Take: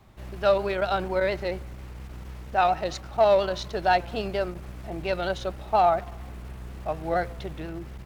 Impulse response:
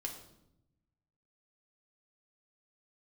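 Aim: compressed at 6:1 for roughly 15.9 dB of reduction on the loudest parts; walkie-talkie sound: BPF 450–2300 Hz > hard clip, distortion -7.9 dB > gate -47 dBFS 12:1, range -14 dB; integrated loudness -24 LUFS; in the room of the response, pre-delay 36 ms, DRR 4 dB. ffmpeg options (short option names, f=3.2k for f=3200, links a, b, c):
-filter_complex "[0:a]acompressor=threshold=-34dB:ratio=6,asplit=2[a][b];[1:a]atrim=start_sample=2205,adelay=36[c];[b][c]afir=irnorm=-1:irlink=0,volume=-3dB[d];[a][d]amix=inputs=2:normalize=0,highpass=450,lowpass=2.3k,asoftclip=type=hard:threshold=-37.5dB,agate=range=-14dB:threshold=-47dB:ratio=12,volume=18.5dB"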